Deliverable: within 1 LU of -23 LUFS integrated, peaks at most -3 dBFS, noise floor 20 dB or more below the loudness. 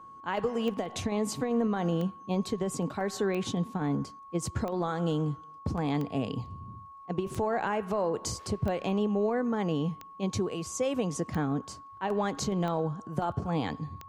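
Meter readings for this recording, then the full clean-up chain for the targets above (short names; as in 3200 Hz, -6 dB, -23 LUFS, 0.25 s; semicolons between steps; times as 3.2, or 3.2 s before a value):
clicks 11; steady tone 1100 Hz; tone level -46 dBFS; loudness -31.5 LUFS; peak -17.5 dBFS; loudness target -23.0 LUFS
-> de-click; notch 1100 Hz, Q 30; gain +8.5 dB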